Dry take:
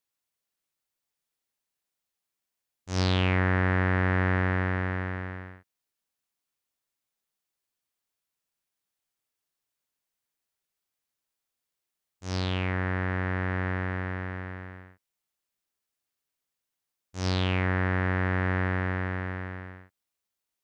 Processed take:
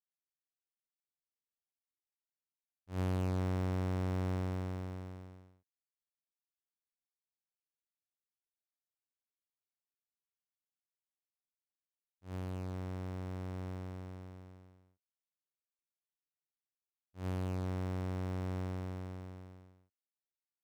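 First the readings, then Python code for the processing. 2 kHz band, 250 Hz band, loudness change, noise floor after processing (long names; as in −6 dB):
−24.0 dB, −9.5 dB, −11.0 dB, below −85 dBFS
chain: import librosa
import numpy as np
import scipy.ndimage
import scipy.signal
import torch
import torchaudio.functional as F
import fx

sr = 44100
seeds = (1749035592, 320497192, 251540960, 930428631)

y = scipy.ndimage.median_filter(x, 41, mode='constant')
y = fx.upward_expand(y, sr, threshold_db=-46.0, expansion=1.5)
y = y * 10.0 ** (-8.0 / 20.0)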